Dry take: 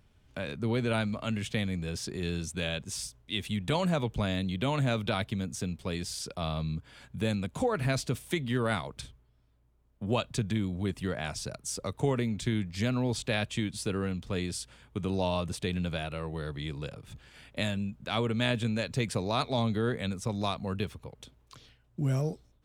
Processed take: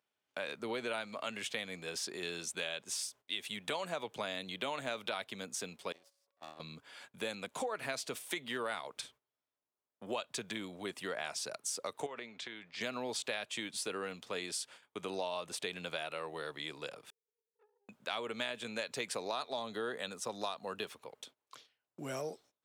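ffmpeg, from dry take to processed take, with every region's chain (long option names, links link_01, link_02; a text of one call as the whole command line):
ffmpeg -i in.wav -filter_complex "[0:a]asettb=1/sr,asplit=3[link_01][link_02][link_03];[link_01]atrim=end=5.924[link_04];[link_02]atrim=start=5.92:end=6.6,asetpts=PTS-STARTPTS,afade=type=in:duration=0.004:curve=qsin,afade=type=out:start_time=0.676:duration=0.004:curve=qsin,agate=range=-23dB:threshold=-31dB:ratio=16:release=100:detection=peak,aeval=exprs='val(0)+0.000708*sin(2*PI*560*n/s)':channel_layout=same,aeval=exprs='max(val(0),0)':channel_layout=same[link_05];[link_03]atrim=start=6.596[link_06];[link_04][link_05]acrossfade=duration=0.004:curve1=hsin:curve2=qsin[link_07];[link_07][link_06]acrossfade=duration=0.004:curve1=qsin:curve2=hsin,asettb=1/sr,asplit=3[link_08][link_09][link_10];[link_08]atrim=end=12.064[link_11];[link_09]atrim=start=12.06:end=12.81,asetpts=PTS-STARTPTS,afade=type=in:duration=0.004:curve=qsin,afade=type=out:start_time=0.746:duration=0.004:curve=qsin,lowpass=3900,acompressor=threshold=-31dB:ratio=5:attack=3.2:release=140:knee=1:detection=peak,lowshelf=frequency=420:gain=-8.5[link_12];[link_10]atrim=start=12.806[link_13];[link_11][link_12]acrossfade=duration=0.004:curve1=hsin:curve2=qsin[link_14];[link_14][link_13]acrossfade=duration=0.004:curve1=qsin:curve2=hsin,asettb=1/sr,asplit=3[link_15][link_16][link_17];[link_15]atrim=end=17.104[link_18];[link_16]atrim=start=17.1:end=17.89,asetpts=PTS-STARTPTS,afade=type=in:duration=0.004:curve=qsin,afade=type=out:start_time=0.786:duration=0.004:curve=qsin,asuperpass=centerf=440:order=12:qfactor=5.2,aeval=exprs='(tanh(501*val(0)+0.75)-tanh(0.75))/501':channel_layout=same[link_19];[link_17]atrim=start=17.886[link_20];[link_18][link_19]acrossfade=duration=0.004:curve1=hsin:curve2=qsin[link_21];[link_21][link_20]acrossfade=duration=0.004:curve1=qsin:curve2=hsin,asettb=1/sr,asplit=3[link_22][link_23][link_24];[link_22]atrim=end=19.334[link_25];[link_23]atrim=start=19.33:end=20.87,asetpts=PTS-STARTPTS,afade=type=in:duration=0.004:curve=qsin,afade=type=out:start_time=1.536:duration=0.004:curve=qsin,highpass=47,bandreject=frequency=2200:width=5.9[link_26];[link_24]atrim=start=20.866[link_27];[link_25][link_26]acrossfade=duration=0.004:curve1=hsin:curve2=qsin[link_28];[link_28][link_27]acrossfade=duration=0.004:curve1=qsin:curve2=hsin,agate=range=-15dB:threshold=-53dB:ratio=16:detection=peak,highpass=500,acompressor=threshold=-35dB:ratio=6,volume=1dB" out.wav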